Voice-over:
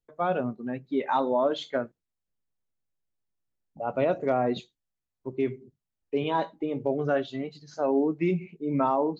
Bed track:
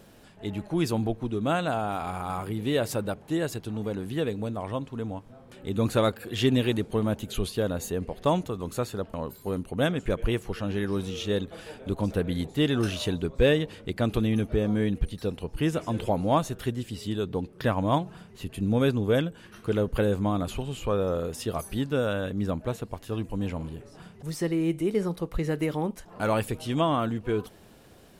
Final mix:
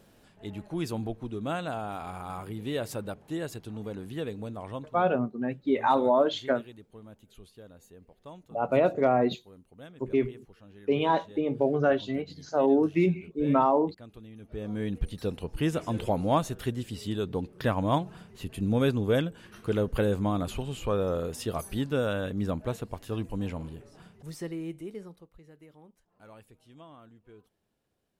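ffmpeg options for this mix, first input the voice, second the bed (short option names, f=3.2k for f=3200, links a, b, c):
-filter_complex "[0:a]adelay=4750,volume=2dB[a];[1:a]volume=15dB,afade=t=out:st=4.78:d=0.29:silence=0.149624,afade=t=in:st=14.39:d=0.81:silence=0.0891251,afade=t=out:st=23.21:d=2.11:silence=0.0595662[b];[a][b]amix=inputs=2:normalize=0"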